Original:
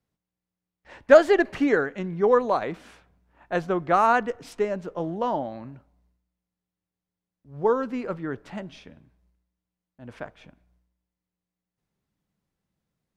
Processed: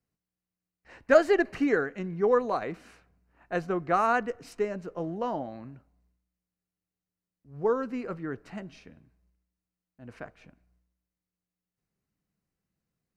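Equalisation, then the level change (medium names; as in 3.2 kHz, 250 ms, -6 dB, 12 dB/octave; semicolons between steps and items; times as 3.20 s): peaking EQ 900 Hz -5.5 dB 0.28 oct; band-stop 580 Hz, Q 13; band-stop 3.4 kHz, Q 5.3; -3.5 dB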